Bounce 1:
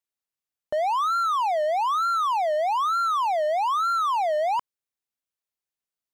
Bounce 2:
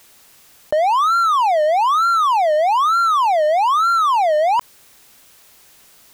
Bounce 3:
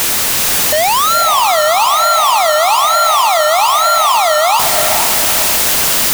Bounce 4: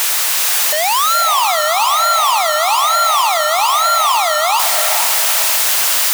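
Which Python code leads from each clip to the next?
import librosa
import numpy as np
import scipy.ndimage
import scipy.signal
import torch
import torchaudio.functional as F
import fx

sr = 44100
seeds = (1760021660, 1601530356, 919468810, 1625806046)

y1 = fx.env_flatten(x, sr, amount_pct=50)
y1 = y1 * librosa.db_to_amplitude(8.0)
y2 = np.sign(y1) * np.sqrt(np.mean(np.square(y1)))
y2 = fx.echo_diffused(y2, sr, ms=461, feedback_pct=45, wet_db=-5.0)
y2 = y2 * librosa.db_to_amplitude(5.0)
y3 = scipy.signal.sosfilt(scipy.signal.butter(2, 730.0, 'highpass', fs=sr, output='sos'), y2)
y3 = y3 * librosa.db_to_amplitude(-1.5)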